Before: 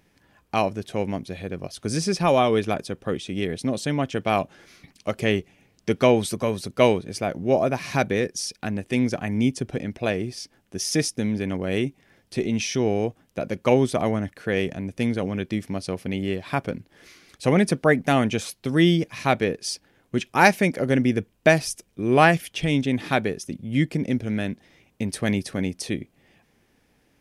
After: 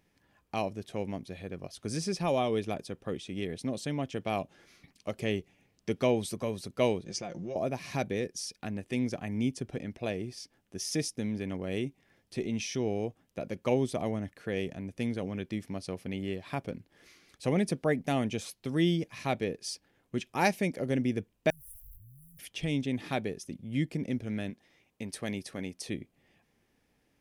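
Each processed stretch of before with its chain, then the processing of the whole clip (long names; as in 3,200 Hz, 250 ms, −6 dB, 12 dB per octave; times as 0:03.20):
0:07.05–0:07.56: comb filter 5.7 ms, depth 56% + downward compressor, threshold −26 dBFS + low-pass with resonance 6,400 Hz, resonance Q 2.7
0:21.50–0:22.39: converter with a step at zero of −30.5 dBFS + inverse Chebyshev band-stop filter 330–3,900 Hz, stop band 70 dB
0:24.50–0:25.86: de-essing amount 30% + low-shelf EQ 250 Hz −7 dB
whole clip: notch filter 1,500 Hz, Q 26; dynamic equaliser 1,400 Hz, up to −6 dB, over −36 dBFS, Q 1.2; level −8.5 dB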